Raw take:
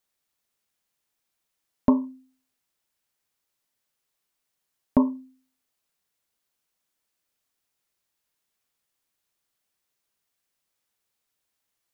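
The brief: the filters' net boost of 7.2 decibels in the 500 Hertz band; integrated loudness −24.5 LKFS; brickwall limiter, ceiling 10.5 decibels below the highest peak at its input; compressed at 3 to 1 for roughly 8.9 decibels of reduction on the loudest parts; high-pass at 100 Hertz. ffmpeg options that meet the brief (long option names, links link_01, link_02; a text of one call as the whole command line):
ffmpeg -i in.wav -af "highpass=100,equalizer=frequency=500:width_type=o:gain=9,acompressor=threshold=-24dB:ratio=3,volume=12dB,alimiter=limit=-7dB:level=0:latency=1" out.wav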